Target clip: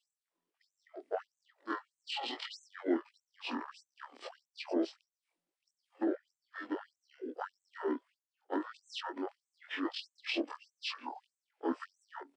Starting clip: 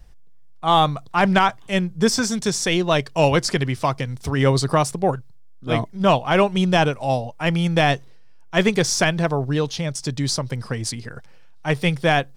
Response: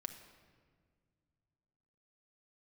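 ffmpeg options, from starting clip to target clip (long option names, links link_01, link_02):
-filter_complex "[0:a]afftfilt=real='re':imag='-im':win_size=2048:overlap=0.75,highshelf=frequency=3000:gain=-10.5,acrossover=split=500[link_01][link_02];[link_02]acompressor=threshold=-35dB:ratio=16[link_03];[link_01][link_03]amix=inputs=2:normalize=0,alimiter=limit=-22.5dB:level=0:latency=1:release=19,asetrate=24046,aresample=44100,atempo=1.83401,afftfilt=real='re*gte(b*sr/1024,220*pow(6200/220,0.5+0.5*sin(2*PI*1.6*pts/sr)))':imag='im*gte(b*sr/1024,220*pow(6200/220,0.5+0.5*sin(2*PI*1.6*pts/sr)))':win_size=1024:overlap=0.75,volume=4dB"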